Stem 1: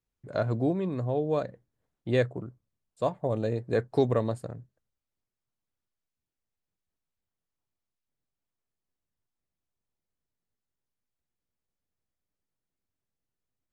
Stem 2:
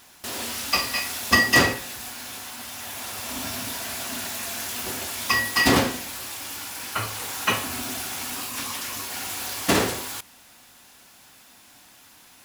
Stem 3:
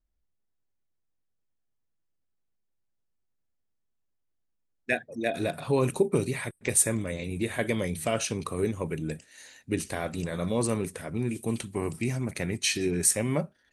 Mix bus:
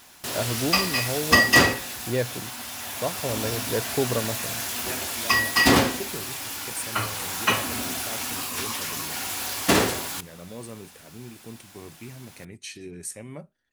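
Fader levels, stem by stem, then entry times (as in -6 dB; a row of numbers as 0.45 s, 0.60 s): -1.0 dB, +1.0 dB, -12.0 dB; 0.00 s, 0.00 s, 0.00 s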